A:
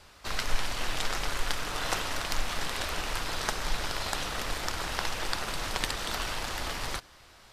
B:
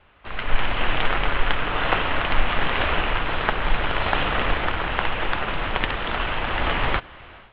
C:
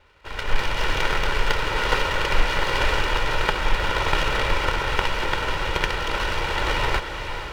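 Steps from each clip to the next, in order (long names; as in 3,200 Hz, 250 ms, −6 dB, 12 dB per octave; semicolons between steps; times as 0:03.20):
Butterworth low-pass 3,200 Hz 48 dB per octave; automatic gain control gain up to 16.5 dB; level −1 dB
lower of the sound and its delayed copy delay 2.1 ms; feedback delay with all-pass diffusion 484 ms, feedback 55%, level −8.5 dB; level +1 dB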